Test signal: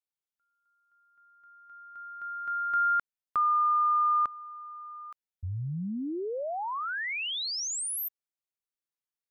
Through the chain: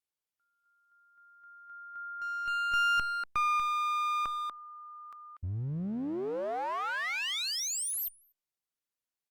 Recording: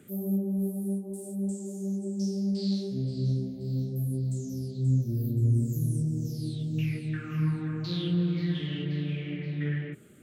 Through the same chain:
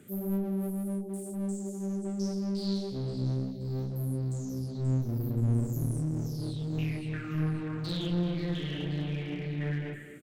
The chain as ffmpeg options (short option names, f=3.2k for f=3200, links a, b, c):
-filter_complex "[0:a]asplit=2[a][b];[b]adelay=240,highpass=300,lowpass=3.4k,asoftclip=type=hard:threshold=-24.5dB,volume=-6dB[c];[a][c]amix=inputs=2:normalize=0,aeval=exprs='clip(val(0),-1,0.02)':c=same" -ar 48000 -c:a libopus -b:a 96k